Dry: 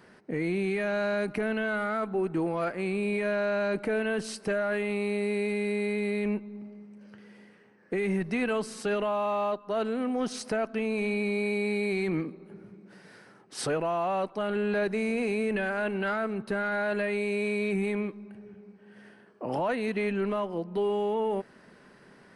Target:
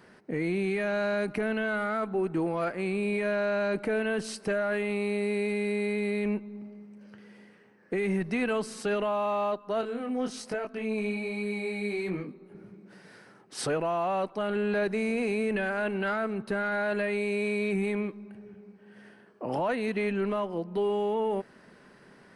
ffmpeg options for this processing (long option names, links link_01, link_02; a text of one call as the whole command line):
ffmpeg -i in.wav -filter_complex "[0:a]asettb=1/sr,asplit=3[link_01][link_02][link_03];[link_01]atrim=end=9.814[link_04];[link_02]atrim=start=9.81:end=12.55,asetpts=PTS-STARTPTS,afade=type=in:duration=0.004:curve=qsin,afade=type=out:start_time=2.736:duration=0.004:curve=qsin,flanger=delay=20:depth=3.8:speed=1.2[link_05];[link_03]atrim=start=12.546[link_06];[link_04][link_05]acrossfade=duration=0.004:curve1=hsin:curve2=qsin[link_07];[link_07][link_06]acrossfade=duration=0.004:curve1=qsin:curve2=hsin" out.wav